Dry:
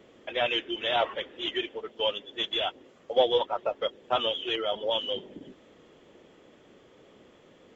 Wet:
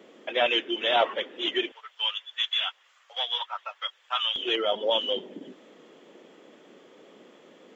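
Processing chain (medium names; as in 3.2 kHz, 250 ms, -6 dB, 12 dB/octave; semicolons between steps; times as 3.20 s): high-pass 190 Hz 24 dB/octave, from 1.72 s 1.1 kHz, from 4.36 s 190 Hz; trim +3.5 dB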